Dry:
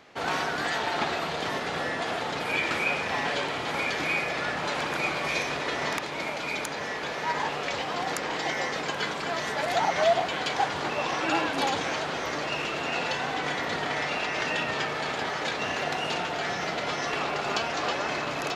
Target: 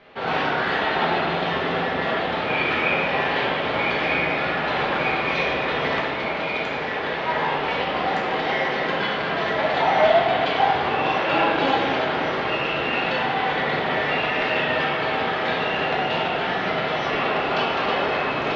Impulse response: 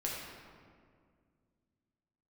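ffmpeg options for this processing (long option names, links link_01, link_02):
-filter_complex "[0:a]lowpass=frequency=3800:width=0.5412,lowpass=frequency=3800:width=1.3066[link_01];[1:a]atrim=start_sample=2205,asetrate=57330,aresample=44100[link_02];[link_01][link_02]afir=irnorm=-1:irlink=0,volume=5.5dB"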